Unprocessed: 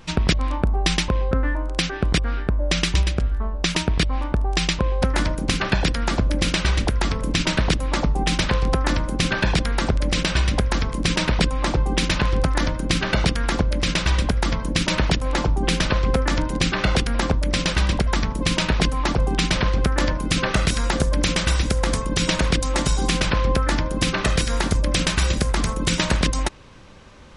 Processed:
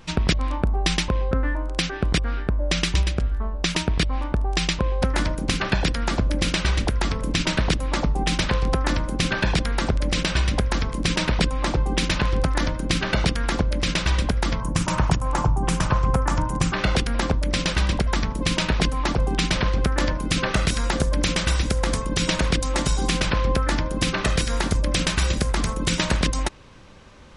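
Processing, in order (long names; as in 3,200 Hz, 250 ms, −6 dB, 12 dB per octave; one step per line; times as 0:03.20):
0:14.60–0:16.74: octave-band graphic EQ 125/250/500/1,000/2,000/4,000/8,000 Hz +7/−4/−4/+8/−5/−10/+5 dB
level −1.5 dB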